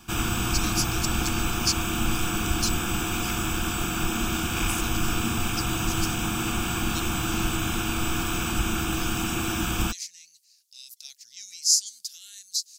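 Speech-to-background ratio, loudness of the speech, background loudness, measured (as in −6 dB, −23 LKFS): −3.5 dB, −30.5 LKFS, −27.0 LKFS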